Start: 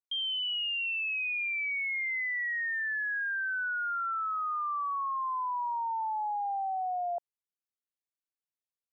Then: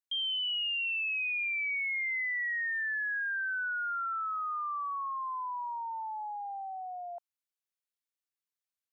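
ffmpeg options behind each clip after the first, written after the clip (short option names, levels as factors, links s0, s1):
-af "highpass=1100"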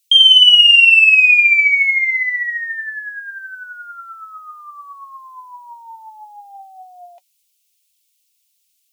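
-af "highshelf=f=1900:t=q:w=1.5:g=10.5,aexciter=amount=3.7:drive=4.7:freq=2200,flanger=delay=1.1:depth=4.5:regen=52:speed=0.76:shape=triangular,volume=2"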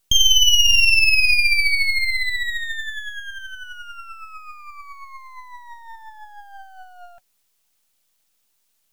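-filter_complex "[0:a]asplit=2[s0][s1];[s1]acompressor=threshold=0.141:ratio=6,volume=0.794[s2];[s0][s2]amix=inputs=2:normalize=0,aeval=exprs='max(val(0),0)':c=same,volume=0.631"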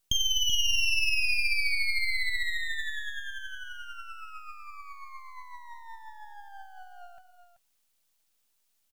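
-filter_complex "[0:a]acompressor=threshold=0.126:ratio=2.5,asplit=2[s0][s1];[s1]aecho=0:1:253|382:0.133|0.335[s2];[s0][s2]amix=inputs=2:normalize=0,volume=0.473"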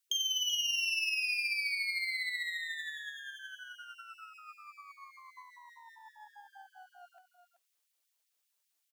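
-af "afftfilt=real='re*gte(b*sr/1024,240*pow(1800/240,0.5+0.5*sin(2*PI*5.1*pts/sr)))':imag='im*gte(b*sr/1024,240*pow(1800/240,0.5+0.5*sin(2*PI*5.1*pts/sr)))':win_size=1024:overlap=0.75,volume=0.562"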